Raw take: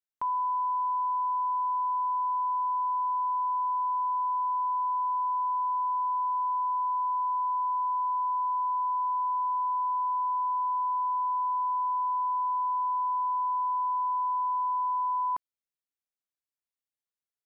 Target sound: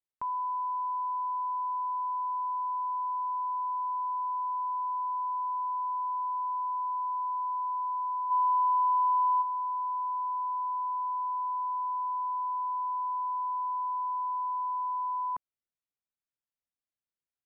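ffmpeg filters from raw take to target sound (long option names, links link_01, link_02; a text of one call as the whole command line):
ffmpeg -i in.wav -filter_complex "[0:a]bass=frequency=250:gain=5,treble=frequency=4000:gain=-13,asplit=3[link_01][link_02][link_03];[link_01]afade=type=out:start_time=8.3:duration=0.02[link_04];[link_02]acontrast=73,afade=type=in:start_time=8.3:duration=0.02,afade=type=out:start_time=9.41:duration=0.02[link_05];[link_03]afade=type=in:start_time=9.41:duration=0.02[link_06];[link_04][link_05][link_06]amix=inputs=3:normalize=0,volume=-3.5dB" out.wav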